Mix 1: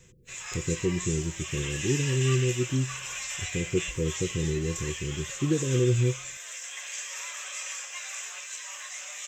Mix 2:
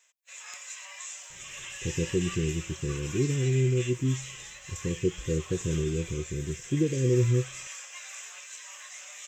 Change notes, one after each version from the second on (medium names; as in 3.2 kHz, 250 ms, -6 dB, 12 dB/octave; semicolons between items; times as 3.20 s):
speech: entry +1.30 s; background -5.0 dB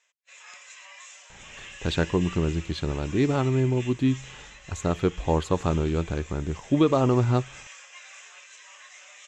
speech: remove rippled Chebyshev low-pass 520 Hz, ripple 9 dB; master: add distance through air 99 m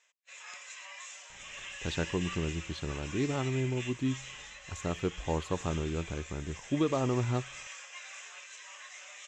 speech -8.5 dB